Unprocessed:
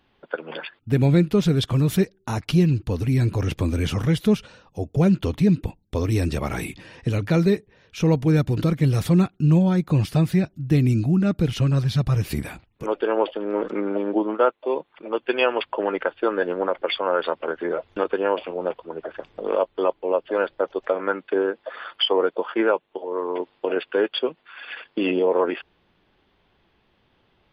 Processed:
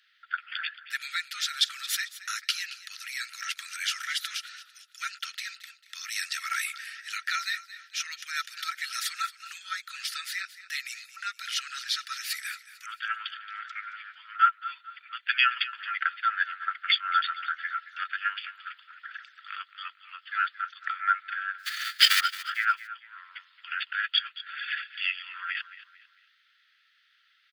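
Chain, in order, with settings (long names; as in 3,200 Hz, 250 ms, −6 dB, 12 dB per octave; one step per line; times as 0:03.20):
0:21.58–0:22.19: spectral envelope flattened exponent 0.3
Chebyshev high-pass with heavy ripple 1,300 Hz, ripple 6 dB
repeating echo 223 ms, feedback 37%, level −15.5 dB
level +7.5 dB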